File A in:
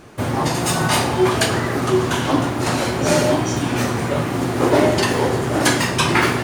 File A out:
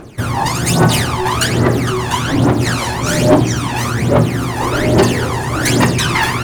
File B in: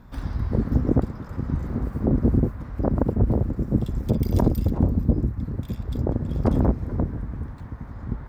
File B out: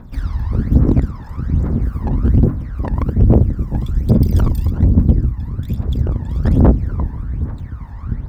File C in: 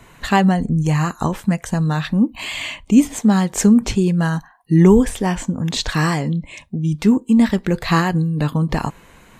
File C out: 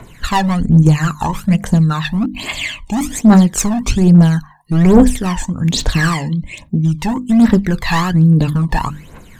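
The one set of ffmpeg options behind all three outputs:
-af "bandreject=f=50:t=h:w=6,bandreject=f=100:t=h:w=6,bandreject=f=150:t=h:w=6,bandreject=f=200:t=h:w=6,bandreject=f=250:t=h:w=6,bandreject=f=300:t=h:w=6,asoftclip=type=hard:threshold=-14dB,aphaser=in_gain=1:out_gain=1:delay=1.2:decay=0.72:speed=1.2:type=triangular,volume=1.5dB"

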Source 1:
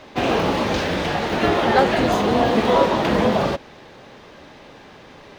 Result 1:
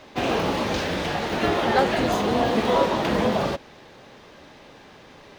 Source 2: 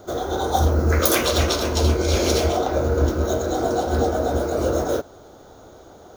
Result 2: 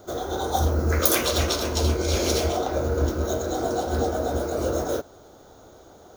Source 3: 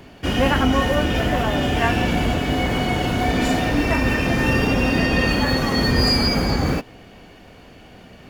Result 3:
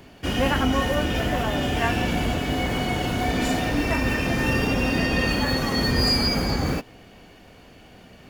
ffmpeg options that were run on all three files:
-af "highshelf=f=5.3k:g=4.5,volume=-4dB"

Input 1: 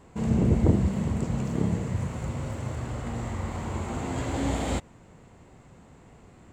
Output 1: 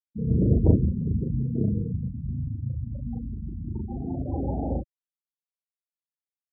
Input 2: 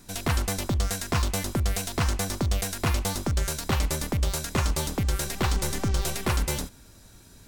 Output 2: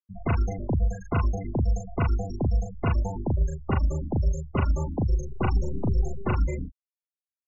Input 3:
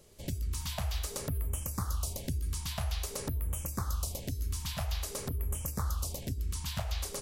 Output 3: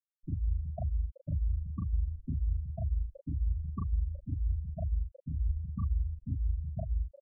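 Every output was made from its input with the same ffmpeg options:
-filter_complex "[0:a]afftfilt=real='re*gte(hypot(re,im),0.0891)':imag='im*gte(hypot(re,im),0.0891)':win_size=1024:overlap=0.75,asplit=2[a][b];[b]adelay=38,volume=-3dB[c];[a][c]amix=inputs=2:normalize=0"

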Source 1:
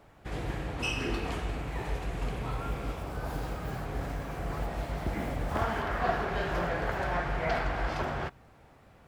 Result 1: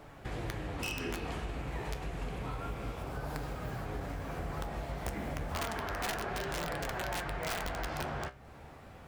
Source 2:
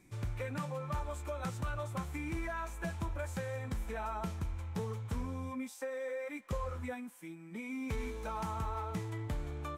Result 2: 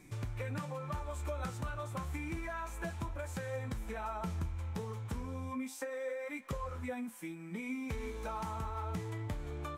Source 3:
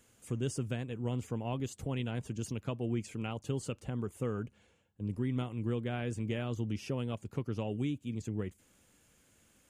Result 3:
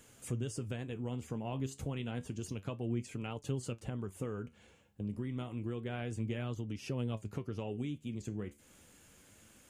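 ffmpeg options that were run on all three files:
-af "aeval=exprs='(mod(12.6*val(0)+1,2)-1)/12.6':c=same,acompressor=threshold=-45dB:ratio=2.5,flanger=delay=6.5:depth=8.6:regen=68:speed=0.3:shape=triangular,volume=10dB"

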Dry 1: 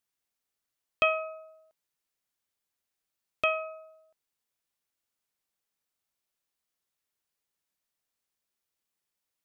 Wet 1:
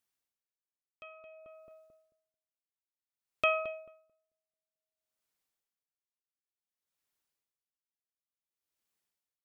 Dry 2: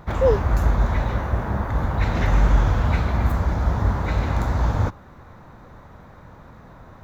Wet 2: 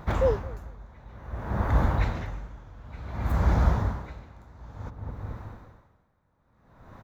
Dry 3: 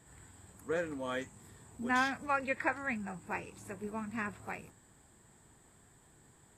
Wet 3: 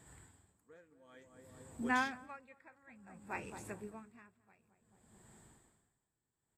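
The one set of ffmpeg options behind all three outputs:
-filter_complex "[0:a]asplit=2[a][b];[b]adelay=220,lowpass=f=840:p=1,volume=-10dB,asplit=2[c][d];[d]adelay=220,lowpass=f=840:p=1,volume=0.51,asplit=2[e][f];[f]adelay=220,lowpass=f=840:p=1,volume=0.51,asplit=2[g][h];[h]adelay=220,lowpass=f=840:p=1,volume=0.51,asplit=2[i][j];[j]adelay=220,lowpass=f=840:p=1,volume=0.51,asplit=2[k][l];[l]adelay=220,lowpass=f=840:p=1,volume=0.51[m];[c][e][g][i][k][m]amix=inputs=6:normalize=0[n];[a][n]amix=inputs=2:normalize=0,aeval=exprs='val(0)*pow(10,-28*(0.5-0.5*cos(2*PI*0.56*n/s))/20)':c=same"

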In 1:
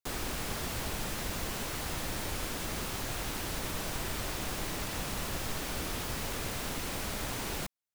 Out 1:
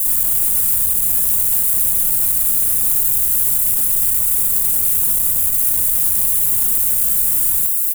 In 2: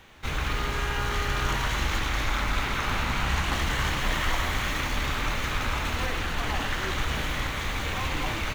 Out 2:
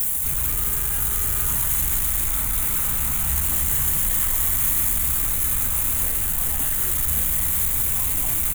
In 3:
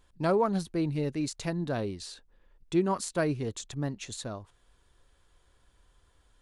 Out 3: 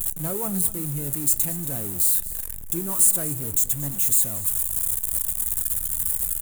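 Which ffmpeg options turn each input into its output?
-filter_complex "[0:a]aeval=exprs='val(0)+0.5*0.0376*sgn(val(0))':c=same,bass=f=250:g=8,treble=f=4k:g=5,aexciter=amount=14.9:drive=7:freq=7.7k,flanger=delay=5.3:depth=8.9:regen=81:speed=0.48:shape=sinusoidal,asplit=2[a][b];[b]aecho=0:1:233:0.158[c];[a][c]amix=inputs=2:normalize=0,aeval=exprs='1.5*(cos(1*acos(clip(val(0)/1.5,-1,1)))-cos(1*PI/2))+0.106*(cos(2*acos(clip(val(0)/1.5,-1,1)))-cos(2*PI/2))':c=same,volume=-6dB"

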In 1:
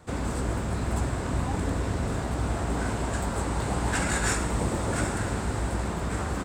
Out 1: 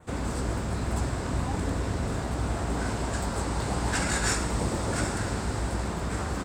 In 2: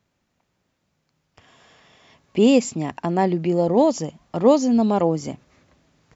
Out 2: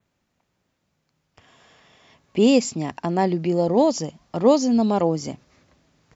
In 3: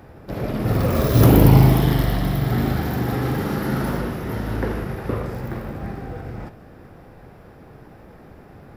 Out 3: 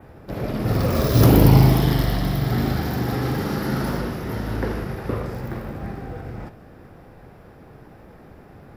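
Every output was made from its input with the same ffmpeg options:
-af "adynamicequalizer=threshold=0.00316:dfrequency=5000:dqfactor=2:tfrequency=5000:tqfactor=2:attack=5:release=100:ratio=0.375:range=3:mode=boostabove:tftype=bell,volume=-1dB"

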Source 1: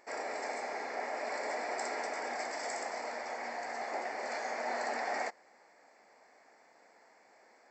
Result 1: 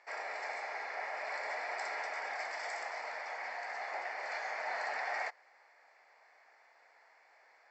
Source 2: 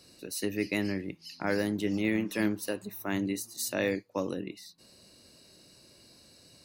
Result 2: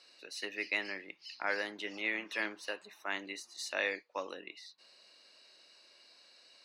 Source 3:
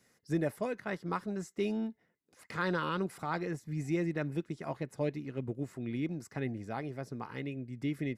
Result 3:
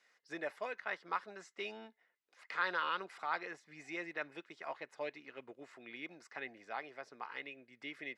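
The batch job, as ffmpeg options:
-af "highpass=720,lowpass=3k,highshelf=f=2.2k:g=9,volume=-1.5dB"

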